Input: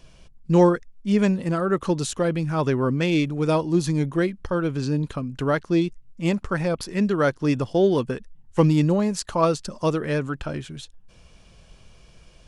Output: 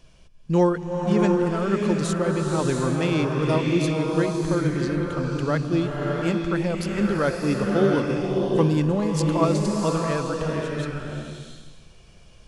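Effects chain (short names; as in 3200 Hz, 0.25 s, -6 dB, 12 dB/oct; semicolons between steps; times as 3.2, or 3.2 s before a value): bloom reverb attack 0.69 s, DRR -0.5 dB; gain -3 dB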